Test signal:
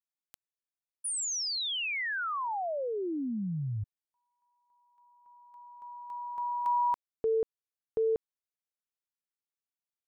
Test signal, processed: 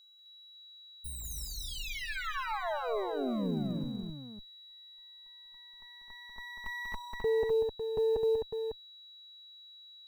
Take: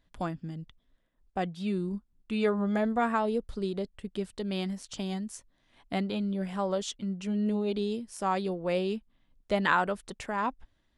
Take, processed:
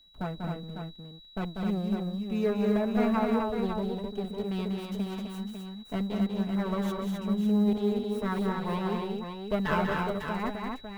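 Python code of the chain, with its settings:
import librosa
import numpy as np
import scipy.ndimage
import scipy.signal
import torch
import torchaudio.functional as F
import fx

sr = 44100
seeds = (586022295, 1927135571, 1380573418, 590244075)

y = fx.lower_of_two(x, sr, delay_ms=4.6)
y = fx.peak_eq(y, sr, hz=6100.0, db=-12.5, octaves=2.8)
y = y + 10.0 ** (-57.0 / 20.0) * np.sin(2.0 * np.pi * 3900.0 * np.arange(len(y)) / sr)
y = fx.echo_multitap(y, sr, ms=(192, 259, 552), db=(-5.0, -4.0, -7.0))
y = fx.quant_companded(y, sr, bits=8)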